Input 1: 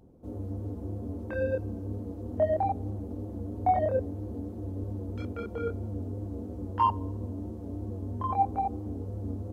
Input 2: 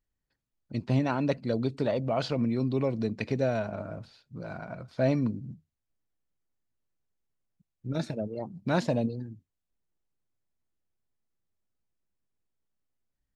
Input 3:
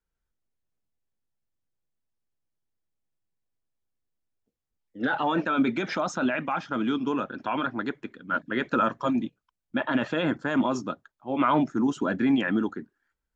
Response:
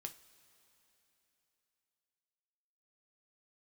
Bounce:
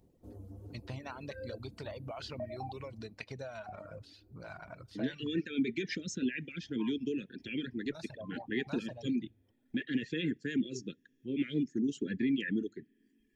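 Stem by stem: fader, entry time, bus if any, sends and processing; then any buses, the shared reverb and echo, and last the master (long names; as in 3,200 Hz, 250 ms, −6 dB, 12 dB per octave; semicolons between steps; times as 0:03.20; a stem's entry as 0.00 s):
0:02.76 −11.5 dB → 0:03.30 −23.5 dB, 0.00 s, send −6 dB, high-shelf EQ 4,300 Hz +8.5 dB
0.0 dB, 0.00 s, send −8.5 dB, parametric band 250 Hz −12.5 dB 2.7 octaves; downward compressor, threshold −36 dBFS, peak gain reduction 8.5 dB
+3.0 dB, 0.00 s, send −11.5 dB, Chebyshev band-stop filter 450–1,800 Hz, order 4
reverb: on, pre-delay 3 ms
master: reverb reduction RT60 0.9 s; downward compressor 1.5 to 1, threshold −47 dBFS, peak gain reduction 11.5 dB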